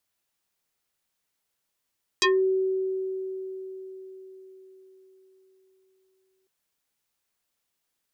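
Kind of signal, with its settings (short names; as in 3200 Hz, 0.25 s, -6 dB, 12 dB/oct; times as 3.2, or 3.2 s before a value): FM tone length 4.25 s, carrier 379 Hz, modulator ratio 3.8, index 5, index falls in 0.20 s exponential, decay 4.79 s, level -17 dB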